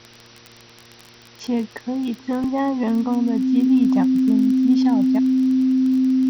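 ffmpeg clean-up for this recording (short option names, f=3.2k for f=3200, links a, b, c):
-af "adeclick=t=4,bandreject=f=117.3:t=h:w=4,bandreject=f=234.6:t=h:w=4,bandreject=f=351.9:t=h:w=4,bandreject=f=469.2:t=h:w=4,bandreject=f=260:w=30,afwtdn=0.0071"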